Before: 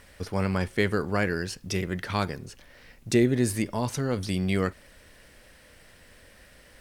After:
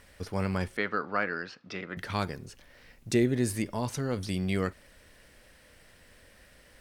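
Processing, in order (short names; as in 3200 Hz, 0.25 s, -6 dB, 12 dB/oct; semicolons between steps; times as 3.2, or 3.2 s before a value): 0.77–1.97 speaker cabinet 270–4200 Hz, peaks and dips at 380 Hz -7 dB, 1300 Hz +9 dB, 3100 Hz -4 dB; gain -3.5 dB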